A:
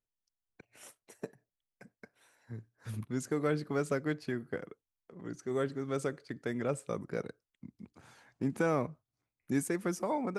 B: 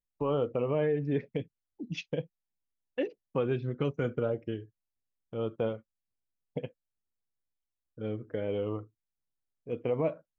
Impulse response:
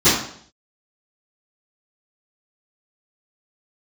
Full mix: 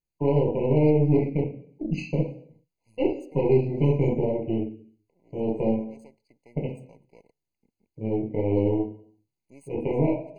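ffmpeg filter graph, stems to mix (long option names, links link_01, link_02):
-filter_complex "[0:a]aeval=exprs='if(lt(val(0),0),0.251*val(0),val(0))':channel_layout=same,lowshelf=frequency=280:gain=-11,volume=-11.5dB[link_01];[1:a]volume=-1dB,asplit=3[link_02][link_03][link_04];[link_03]volume=-18.5dB[link_05];[link_04]apad=whole_len=458072[link_06];[link_01][link_06]sidechaincompress=threshold=-40dB:ratio=8:attack=16:release=163[link_07];[2:a]atrim=start_sample=2205[link_08];[link_05][link_08]afir=irnorm=-1:irlink=0[link_09];[link_07][link_02][link_09]amix=inputs=3:normalize=0,aeval=exprs='0.335*(cos(1*acos(clip(val(0)/0.335,-1,1)))-cos(1*PI/2))+0.0266*(cos(6*acos(clip(val(0)/0.335,-1,1)))-cos(6*PI/2))':channel_layout=same,afftfilt=real='re*eq(mod(floor(b*sr/1024/1000),2),0)':imag='im*eq(mod(floor(b*sr/1024/1000),2),0)':win_size=1024:overlap=0.75"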